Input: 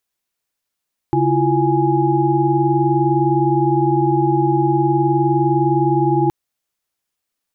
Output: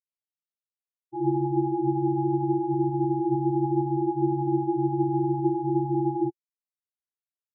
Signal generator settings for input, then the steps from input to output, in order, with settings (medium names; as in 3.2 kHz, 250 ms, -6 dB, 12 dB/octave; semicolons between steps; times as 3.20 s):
chord C#3/E4/F4/G#5 sine, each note -18.5 dBFS 5.17 s
peak limiter -12.5 dBFS; flange 0.68 Hz, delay 7.3 ms, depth 8.5 ms, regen -76%; spectral contrast expander 4:1